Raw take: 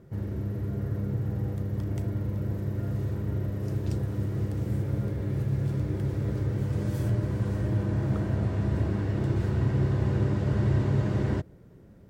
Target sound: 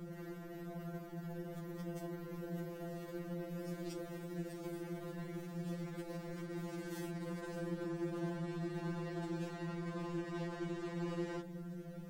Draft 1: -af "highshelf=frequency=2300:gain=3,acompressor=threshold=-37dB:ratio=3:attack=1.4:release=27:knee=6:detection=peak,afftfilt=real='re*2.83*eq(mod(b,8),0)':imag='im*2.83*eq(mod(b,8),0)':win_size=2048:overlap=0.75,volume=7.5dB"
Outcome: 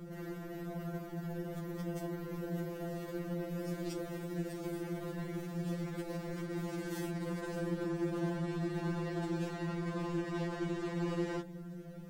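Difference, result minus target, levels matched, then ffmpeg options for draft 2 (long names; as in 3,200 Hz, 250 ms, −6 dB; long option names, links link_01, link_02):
downward compressor: peak gain reduction −4.5 dB
-af "highshelf=frequency=2300:gain=3,acompressor=threshold=-44dB:ratio=3:attack=1.4:release=27:knee=6:detection=peak,afftfilt=real='re*2.83*eq(mod(b,8),0)':imag='im*2.83*eq(mod(b,8),0)':win_size=2048:overlap=0.75,volume=7.5dB"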